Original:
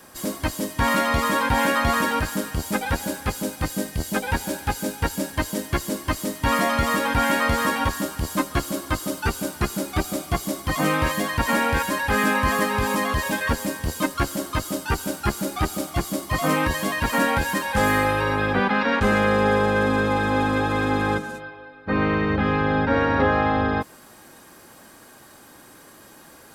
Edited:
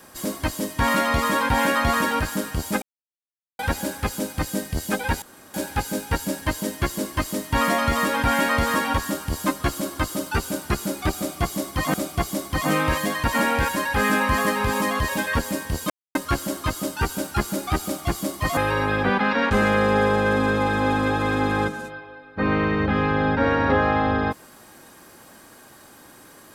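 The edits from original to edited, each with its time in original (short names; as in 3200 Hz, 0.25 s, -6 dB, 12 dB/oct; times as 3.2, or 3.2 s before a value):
2.82 insert silence 0.77 s
4.45 insert room tone 0.32 s
10.08–10.85 loop, 2 plays
14.04 insert silence 0.25 s
16.46–18.07 cut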